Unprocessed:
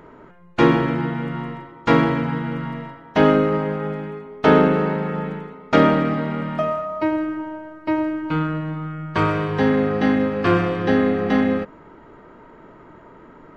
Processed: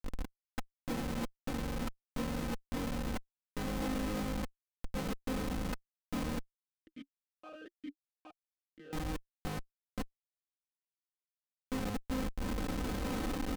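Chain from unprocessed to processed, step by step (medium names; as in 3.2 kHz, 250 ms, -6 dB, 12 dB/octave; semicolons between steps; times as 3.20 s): echo from a far wall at 110 m, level -7 dB; level rider gain up to 15 dB; inverted gate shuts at -9 dBFS, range -40 dB; compression 6:1, threshold -36 dBFS, peak gain reduction 19 dB; Schmitt trigger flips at -36 dBFS; comb 3.9 ms; 6.59–8.93 s: talking filter a-i 1.2 Hz; trim +4 dB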